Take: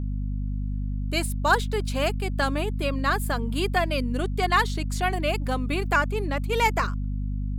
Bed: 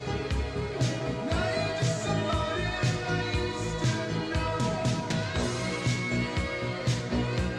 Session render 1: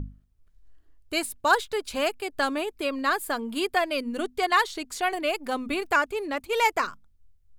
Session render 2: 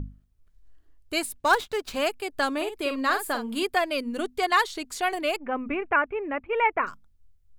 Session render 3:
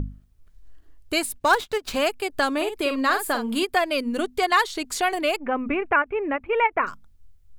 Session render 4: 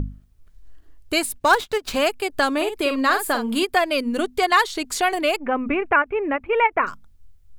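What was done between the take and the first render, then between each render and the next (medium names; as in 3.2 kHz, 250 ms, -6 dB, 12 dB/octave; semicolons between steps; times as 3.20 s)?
hum notches 50/100/150/200/250 Hz
1.39–1.96 s: sliding maximum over 3 samples; 2.56–3.63 s: doubling 49 ms -8 dB; 5.36–6.87 s: steep low-pass 2.6 kHz 48 dB/octave
in parallel at +3 dB: compression, threshold -33 dBFS, peak gain reduction 17 dB; on the sum: endings held to a fixed fall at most 580 dB/s
trim +2.5 dB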